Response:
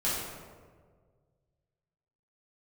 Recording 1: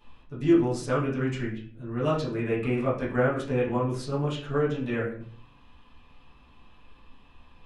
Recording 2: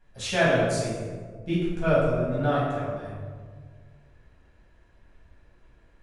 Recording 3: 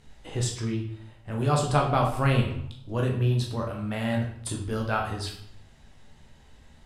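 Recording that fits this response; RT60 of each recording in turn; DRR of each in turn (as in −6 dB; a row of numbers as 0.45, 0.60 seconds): 2; 0.50, 1.7, 0.70 seconds; −9.5, −9.5, 0.0 decibels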